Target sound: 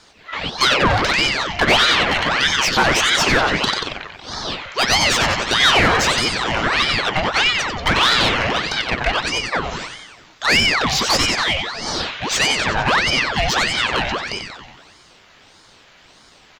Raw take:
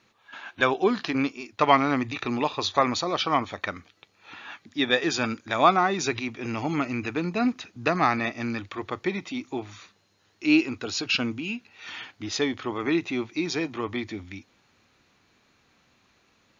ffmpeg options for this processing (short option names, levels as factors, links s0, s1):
-filter_complex "[0:a]asplit=9[s0][s1][s2][s3][s4][s5][s6][s7][s8];[s1]adelay=92,afreqshift=33,volume=0.422[s9];[s2]adelay=184,afreqshift=66,volume=0.257[s10];[s3]adelay=276,afreqshift=99,volume=0.157[s11];[s4]adelay=368,afreqshift=132,volume=0.0955[s12];[s5]adelay=460,afreqshift=165,volume=0.0582[s13];[s6]adelay=552,afreqshift=198,volume=0.0355[s14];[s7]adelay=644,afreqshift=231,volume=0.0216[s15];[s8]adelay=736,afreqshift=264,volume=0.0132[s16];[s0][s9][s10][s11][s12][s13][s14][s15][s16]amix=inputs=9:normalize=0,asplit=2[s17][s18];[s18]highpass=f=720:p=1,volume=20,asoftclip=type=tanh:threshold=0.668[s19];[s17][s19]amix=inputs=2:normalize=0,lowpass=f=4400:p=1,volume=0.501,aeval=exprs='val(0)*sin(2*PI*1500*n/s+1500*0.8/1.6*sin(2*PI*1.6*n/s))':c=same"